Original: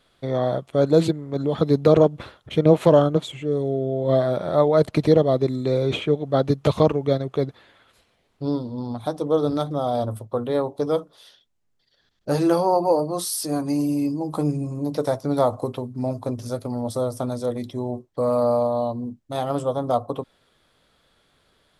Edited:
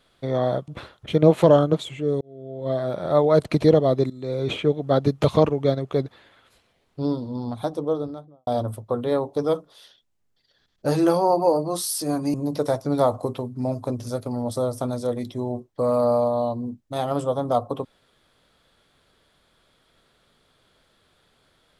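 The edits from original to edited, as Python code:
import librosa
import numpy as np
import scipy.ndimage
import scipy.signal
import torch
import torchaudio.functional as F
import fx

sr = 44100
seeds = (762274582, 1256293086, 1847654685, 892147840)

y = fx.studio_fade_out(x, sr, start_s=8.97, length_s=0.93)
y = fx.edit(y, sr, fx.cut(start_s=0.68, length_s=1.43),
    fx.fade_in_span(start_s=3.64, length_s=1.03),
    fx.fade_in_from(start_s=5.53, length_s=0.51, floor_db=-18.0),
    fx.cut(start_s=13.77, length_s=0.96), tone=tone)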